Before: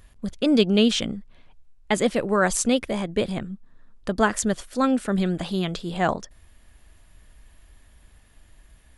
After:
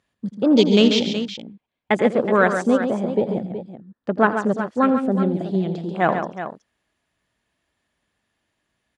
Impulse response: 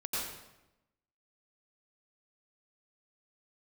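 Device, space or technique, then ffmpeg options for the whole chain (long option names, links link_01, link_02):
over-cleaned archive recording: -filter_complex "[0:a]highpass=170,lowpass=6900,afwtdn=0.0355,asettb=1/sr,asplit=3[link_01][link_02][link_03];[link_01]atrim=end=3.074[link_04];[link_02]atrim=start=3.07:end=4.8,asetpts=PTS-STARTPTS,afade=type=in:duration=0.004:curve=qsin,afade=type=out:start_time=1.726:duration=0.004:curve=qsin,highshelf=frequency=5800:gain=-8[link_05];[link_03]atrim=start=4.796[link_06];[link_04][link_05]acrossfade=duration=0.004:curve1=hsin:curve2=qsin[link_07];[link_07][link_06]acrossfade=duration=0.004:curve1=qsin:curve2=hsin,aecho=1:1:84|138|371:0.168|0.398|0.282,volume=4dB"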